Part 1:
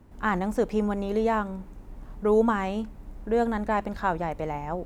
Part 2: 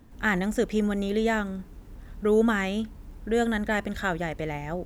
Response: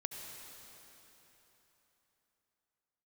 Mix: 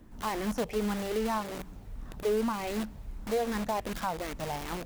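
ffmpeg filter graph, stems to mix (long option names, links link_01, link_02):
-filter_complex "[0:a]asplit=2[link_01][link_02];[link_02]afreqshift=-2.6[link_03];[link_01][link_03]amix=inputs=2:normalize=1,volume=-2dB[link_04];[1:a]acrossover=split=610|2200[link_05][link_06][link_07];[link_05]acompressor=threshold=-32dB:ratio=4[link_08];[link_06]acompressor=threshold=-42dB:ratio=4[link_09];[link_07]acompressor=threshold=-48dB:ratio=4[link_10];[link_08][link_09][link_10]amix=inputs=3:normalize=0,aeval=exprs='(mod(47.3*val(0)+1,2)-1)/47.3':channel_layout=same,volume=-3.5dB,asplit=2[link_11][link_12];[link_12]volume=-19dB[link_13];[2:a]atrim=start_sample=2205[link_14];[link_13][link_14]afir=irnorm=-1:irlink=0[link_15];[link_04][link_11][link_15]amix=inputs=3:normalize=0,alimiter=limit=-20.5dB:level=0:latency=1:release=213"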